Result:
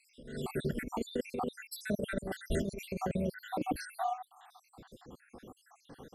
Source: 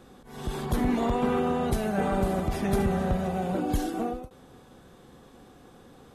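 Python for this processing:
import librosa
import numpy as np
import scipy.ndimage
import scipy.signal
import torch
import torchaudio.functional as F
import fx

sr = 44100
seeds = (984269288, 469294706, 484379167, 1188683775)

y = fx.spec_dropout(x, sr, seeds[0], share_pct=74)
y = fx.low_shelf(y, sr, hz=200.0, db=-2.5)
y = fx.over_compress(y, sr, threshold_db=-32.0, ratio=-0.5)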